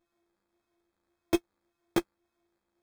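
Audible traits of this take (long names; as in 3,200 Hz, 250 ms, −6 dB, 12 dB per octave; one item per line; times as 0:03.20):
a buzz of ramps at a fixed pitch in blocks of 128 samples
phaser sweep stages 2, 1.8 Hz, lowest notch 800–2,800 Hz
aliases and images of a low sample rate 2,900 Hz, jitter 0%
a shimmering, thickened sound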